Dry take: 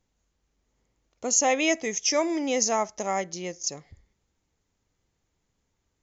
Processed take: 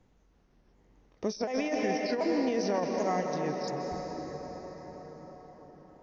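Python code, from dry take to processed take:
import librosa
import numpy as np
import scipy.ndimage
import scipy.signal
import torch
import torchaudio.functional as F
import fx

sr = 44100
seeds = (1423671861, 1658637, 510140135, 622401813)

y = fx.pitch_ramps(x, sr, semitones=-3.5, every_ms=736)
y = fx.low_shelf(y, sr, hz=160.0, db=4.0)
y = fx.rev_plate(y, sr, seeds[0], rt60_s=4.7, hf_ratio=0.6, predelay_ms=115, drr_db=4.0)
y = fx.over_compress(y, sr, threshold_db=-25.0, ratio=-0.5)
y = fx.lowpass(y, sr, hz=1300.0, slope=6)
y = fx.band_squash(y, sr, depth_pct=40)
y = F.gain(torch.from_numpy(y), -1.5).numpy()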